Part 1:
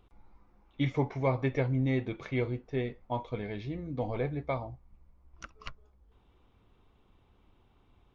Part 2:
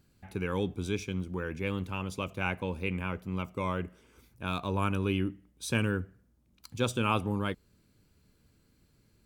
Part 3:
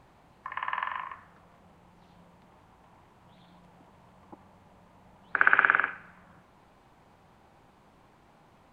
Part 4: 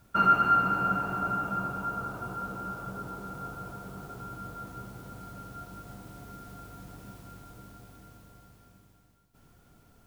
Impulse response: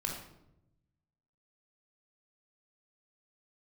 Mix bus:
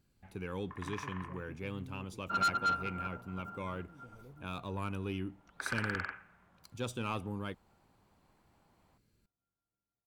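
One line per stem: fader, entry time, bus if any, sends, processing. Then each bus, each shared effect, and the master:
-19.5 dB, 0.05 s, no send, treble ducked by the level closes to 340 Hz, closed at -33.5 dBFS
-7.5 dB, 0.00 s, no send, dry
-11.5 dB, 0.25 s, no send, dry
+1.5 dB, 2.15 s, no send, tone controls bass -3 dB, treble -10 dB; upward expander 2.5:1, over -48 dBFS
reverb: off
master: soft clip -25.5 dBFS, distortion -6 dB

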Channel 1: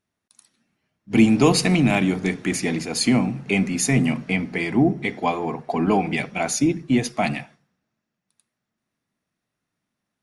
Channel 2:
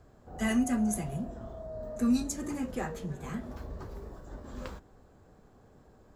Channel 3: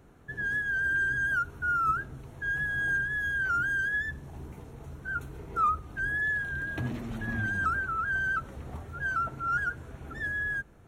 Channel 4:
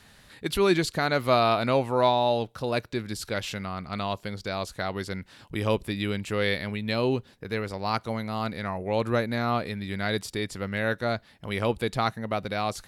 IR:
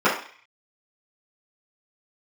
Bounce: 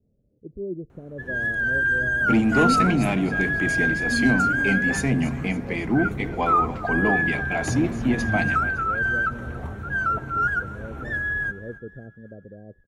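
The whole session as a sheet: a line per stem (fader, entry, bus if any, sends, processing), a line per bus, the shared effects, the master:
-2.0 dB, 1.15 s, no send, echo send -15.5 dB, soft clip -10.5 dBFS, distortion -18 dB
-1.0 dB, 2.10 s, no send, no echo send, comb 7.3 ms, depth 83%
+2.5 dB, 0.90 s, no send, echo send -19.5 dB, AGC gain up to 4.5 dB
-9.0 dB, 0.00 s, no send, no echo send, steep low-pass 560 Hz 48 dB/oct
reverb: off
echo: feedback echo 0.28 s, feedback 50%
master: high shelf 3900 Hz -9.5 dB

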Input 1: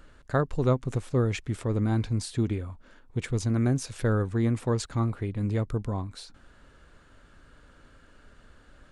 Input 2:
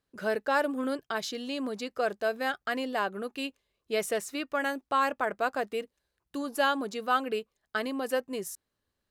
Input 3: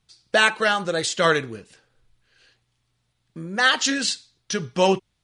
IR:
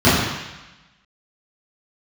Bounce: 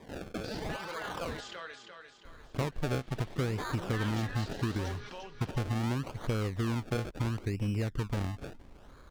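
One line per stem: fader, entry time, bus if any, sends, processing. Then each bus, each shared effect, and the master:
+1.5 dB, 2.25 s, bus A, no send, no echo send, dry
off
-13.5 dB, 0.00 s, bus A, no send, echo send -6 dB, limiter -12 dBFS, peak gain reduction 9.5 dB; band-pass 1800 Hz, Q 0.52; backwards sustainer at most 24 dB/s
bus A: 0.0 dB, decimation with a swept rate 31×, swing 100% 0.75 Hz; compressor 12:1, threshold -28 dBFS, peak gain reduction 12.5 dB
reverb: off
echo: feedback echo 0.348 s, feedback 44%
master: high shelf 9000 Hz -11 dB

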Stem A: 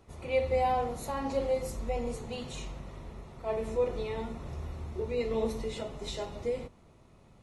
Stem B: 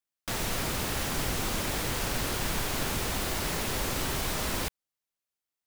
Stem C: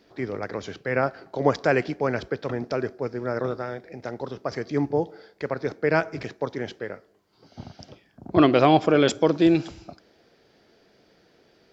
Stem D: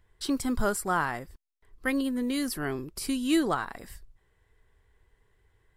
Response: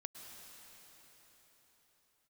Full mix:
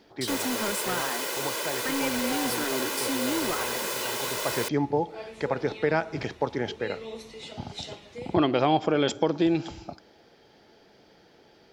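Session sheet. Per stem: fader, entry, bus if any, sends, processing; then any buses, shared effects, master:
-8.0 dB, 1.70 s, no send, weighting filter D
0.0 dB, 0.00 s, no send, HPF 300 Hz 24 dB/oct; comb 2 ms, depth 65%
+2.0 dB, 0.00 s, no send, compressor 2.5:1, threshold -25 dBFS, peak gain reduction 9.5 dB; small resonant body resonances 850/3200 Hz, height 10 dB; auto duck -11 dB, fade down 0.50 s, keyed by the fourth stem
-4.0 dB, 0.00 s, no send, steep high-pass 180 Hz 72 dB/oct; compressor 2:1, threshold -37 dBFS, peak gain reduction 9.5 dB; sample leveller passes 3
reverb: off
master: dry

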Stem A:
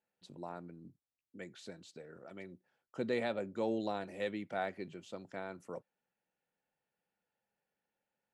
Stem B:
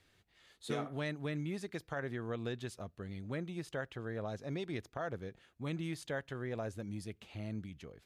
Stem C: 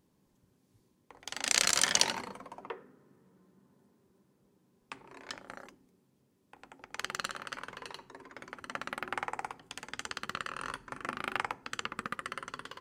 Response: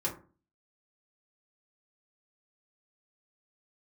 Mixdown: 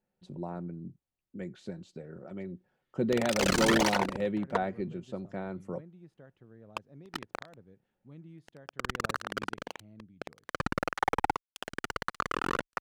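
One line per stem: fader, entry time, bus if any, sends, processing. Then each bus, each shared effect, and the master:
+2.0 dB, 0.00 s, no send, high shelf 5500 Hz +5.5 dB; comb 5.4 ms, depth 31%
-17.5 dB, 2.45 s, no send, Chebyshev high-pass 170 Hz
-1.5 dB, 1.85 s, no send, fuzz box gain 34 dB, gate -37 dBFS; tape flanging out of phase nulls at 1.7 Hz, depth 1.9 ms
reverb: off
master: tilt -3.5 dB/oct

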